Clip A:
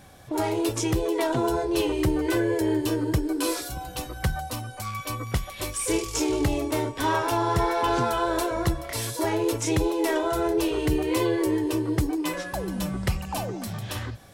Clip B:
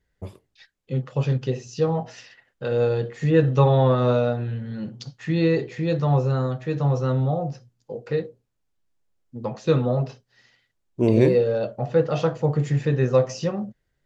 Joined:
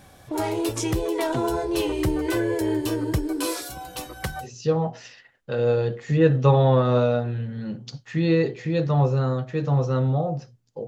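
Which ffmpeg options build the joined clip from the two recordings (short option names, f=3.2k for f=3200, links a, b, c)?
-filter_complex "[0:a]asettb=1/sr,asplit=3[a][b][c];[a]atrim=end=3.454[d];[b]atrim=start=3.45:end=4.48,asetpts=PTS-STARTPTS,afade=t=in:d=0.004:c=qsin,afade=t=out:st=1.026:d=0.004:c=qsin,lowshelf=f=130:g=-11[e];[c]atrim=start=4.476[f];[d][e]acrossfade=d=0.004:c1=hsin:c2=qsin[g];[g][f]acrossfade=d=0.004:c1=qsin:c2=hsin,apad=whole_dur=10.87,atrim=end=10.87,atrim=end=4.48,asetpts=PTS-STARTPTS[h];[1:a]atrim=start=1.53:end=8,asetpts=PTS-STARTPTS[i];[h][i]acrossfade=d=0.08:c1=tri:c2=tri"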